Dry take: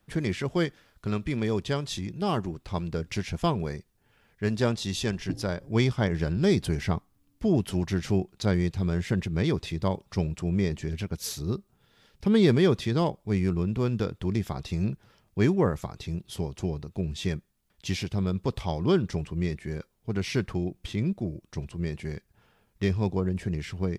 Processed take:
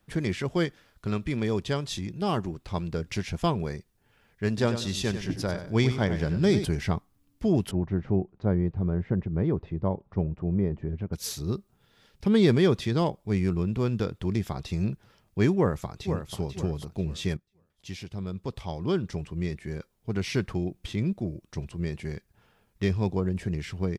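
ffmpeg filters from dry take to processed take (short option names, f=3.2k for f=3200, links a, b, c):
-filter_complex "[0:a]asettb=1/sr,asplit=3[a][b][c];[a]atrim=end=4.484[d];[b]atrim=start=4.48:end=6.65,asetpts=PTS-STARTPTS,afade=t=in:d=0.004:c=qsin,afade=t=out:st=2.166:d=0.004:c=qsin,aecho=1:1:95|190|285:0.316|0.0885|0.0248,atrim=end_sample=95697[e];[c]atrim=start=6.646[f];[d][e]acrossfade=d=0.004:c1=hsin:c2=qsin[g];[g][f]acrossfade=d=0.004:c1=qsin:c2=hsin,asettb=1/sr,asplit=3[h][i][j];[h]atrim=end=7.714[k];[i]atrim=start=7.71:end=11.13,asetpts=PTS-STARTPTS,afade=t=in:d=0.004:c=qsin,afade=t=out:st=3.416:d=0.004:c=qsin,lowpass=1k[l];[j]atrim=start=11.126[m];[k][l]acrossfade=d=0.004:c1=hsin:c2=qsin[n];[n][m]acrossfade=d=0.004:c1=qsin:c2=hsin,asplit=2[o][p];[p]afade=t=in:st=15.56:d=0.01,afade=t=out:st=16.35:d=0.01,aecho=0:1:490|980|1470|1960:0.421697|0.147594|0.0516578|0.0180802[q];[o][q]amix=inputs=2:normalize=0,asplit=2[r][s];[r]atrim=end=17.37,asetpts=PTS-STARTPTS,afade=t=out:st=17.366:d=0.004:c=hsin:silence=0.199526[t];[s]atrim=start=17.37,asetpts=PTS-STARTPTS,afade=t=in:d=2.74:silence=0.199526[u];[t][u]concat=n=2:v=0:a=1"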